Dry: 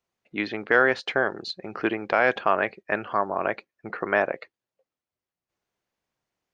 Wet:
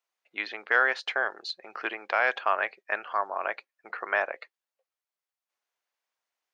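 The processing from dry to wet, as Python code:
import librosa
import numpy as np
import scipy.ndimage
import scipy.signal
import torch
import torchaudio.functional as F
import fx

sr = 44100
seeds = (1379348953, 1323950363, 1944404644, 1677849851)

y = scipy.signal.sosfilt(scipy.signal.butter(2, 760.0, 'highpass', fs=sr, output='sos'), x)
y = y * 10.0 ** (-1.5 / 20.0)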